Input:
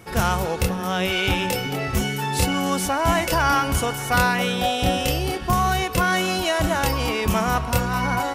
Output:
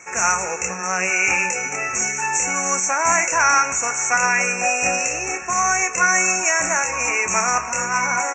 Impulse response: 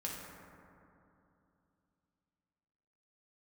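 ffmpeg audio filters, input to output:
-filter_complex "[0:a]aderivative,asoftclip=type=tanh:threshold=-12dB,asuperstop=centerf=3900:order=20:qfactor=1.3,aecho=1:1:16|30:0.237|0.178,asplit=2[a][b];[1:a]atrim=start_sample=2205,atrim=end_sample=3528[c];[b][c]afir=irnorm=-1:irlink=0,volume=-8.5dB[d];[a][d]amix=inputs=2:normalize=0,alimiter=level_in=18.5dB:limit=-1dB:release=50:level=0:latency=1,volume=-1.5dB" -ar 16000 -c:a pcm_alaw

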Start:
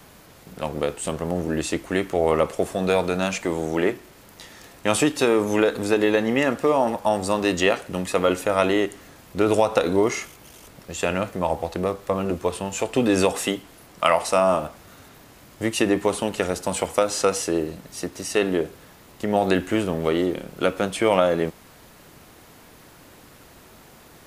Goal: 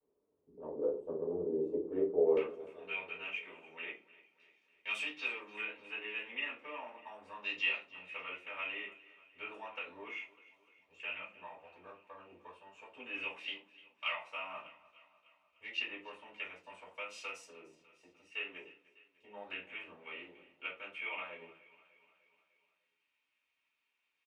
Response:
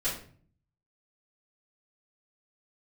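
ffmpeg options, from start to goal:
-filter_complex "[0:a]afwtdn=0.0251,asetnsamples=n=441:p=0,asendcmd='2.37 bandpass f 2500',bandpass=f=420:t=q:w=5:csg=0,aecho=1:1:300|600|900|1200|1500:0.106|0.0604|0.0344|0.0196|0.0112[a];[1:a]atrim=start_sample=2205,asetrate=83790,aresample=44100[b];[a][b]afir=irnorm=-1:irlink=0,volume=-5dB"

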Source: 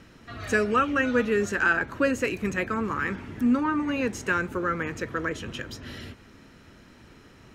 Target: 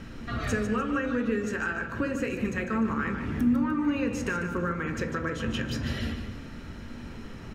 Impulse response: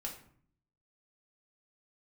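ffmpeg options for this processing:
-filter_complex "[0:a]acompressor=threshold=-35dB:ratio=6,aecho=1:1:149|298|447|596:0.355|0.142|0.0568|0.0227,asplit=2[a][b];[1:a]atrim=start_sample=2205,lowshelf=f=240:g=10,highshelf=f=7.4k:g=-10.5[c];[b][c]afir=irnorm=-1:irlink=0,volume=2.5dB[d];[a][d]amix=inputs=2:normalize=0"

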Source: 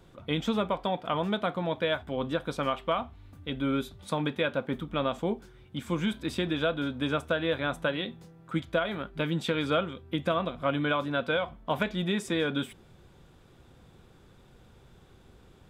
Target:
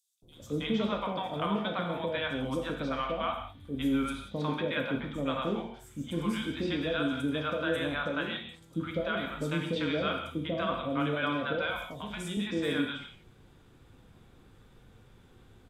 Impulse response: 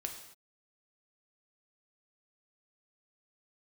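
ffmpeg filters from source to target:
-filter_complex "[0:a]asettb=1/sr,asplit=3[a][b][c];[a]atrim=end=11.594[d];[b]atrim=start=11.59:end=12.15,asetpts=PTS-STARTPTS,afade=t=in:d=0.004:c=qsin,afade=t=out:st=0.556:d=0.004:c=qsin,acrossover=split=120|3000[e][f][g];[f]acompressor=threshold=-36dB:ratio=4[h];[e][h][g]amix=inputs=3:normalize=0[i];[c]atrim=start=12.146[j];[d][i]acrossfade=d=0.004:c1=hsin:c2=qsin[k];[k][j]acrossfade=d=0.004:c1=qsin:c2=hsin,acrossover=split=650|5500[l][m][n];[l]adelay=220[o];[m]adelay=320[p];[o][p][n]amix=inputs=3:normalize=0[q];[1:a]atrim=start_sample=2205,atrim=end_sample=6174,asetrate=31311,aresample=44100[r];[q][r]afir=irnorm=-1:irlink=0,volume=-2dB"

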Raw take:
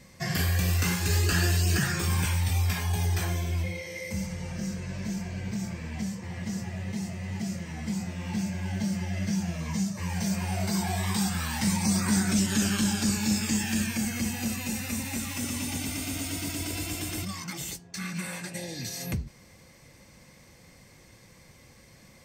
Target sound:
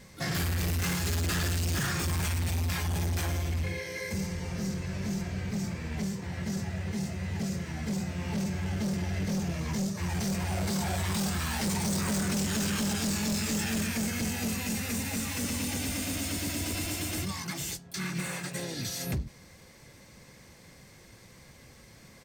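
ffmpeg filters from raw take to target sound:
-filter_complex "[0:a]asplit=3[a][b][c];[b]asetrate=35002,aresample=44100,atempo=1.25992,volume=-7dB[d];[c]asetrate=88200,aresample=44100,atempo=0.5,volume=-14dB[e];[a][d][e]amix=inputs=3:normalize=0,asoftclip=type=hard:threshold=-27dB"

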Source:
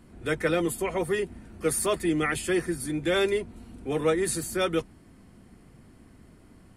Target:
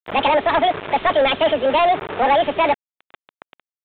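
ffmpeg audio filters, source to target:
-filter_complex "[0:a]acrusher=bits=6:mix=0:aa=0.000001,asetrate=77616,aresample=44100,asplit=2[a][b];[b]highpass=f=720:p=1,volume=23dB,asoftclip=type=tanh:threshold=-12dB[c];[a][c]amix=inputs=2:normalize=0,lowpass=f=2.1k:p=1,volume=-6dB,aresample=8000,aresample=44100,volume=4.5dB"

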